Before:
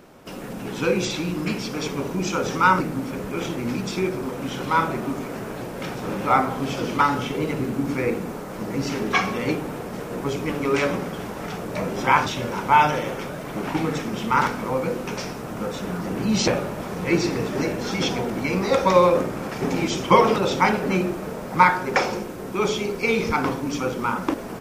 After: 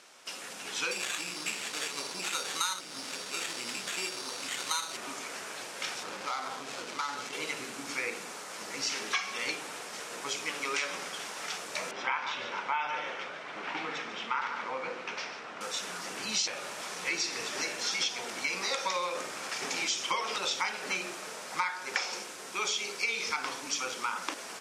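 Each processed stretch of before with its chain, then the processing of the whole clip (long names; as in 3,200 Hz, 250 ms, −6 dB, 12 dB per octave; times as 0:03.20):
0:00.91–0:04.97: sample-rate reduction 5,100 Hz + saturating transformer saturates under 730 Hz
0:06.03–0:07.33: running median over 15 samples + downward compressor 5 to 1, threshold −23 dBFS
0:11.91–0:15.61: band-pass filter 110–2,600 Hz + single-tap delay 145 ms −10.5 dB
whole clip: meter weighting curve ITU-R 468; downward compressor 6 to 1, threshold −22 dBFS; low-shelf EQ 400 Hz −5 dB; level −6 dB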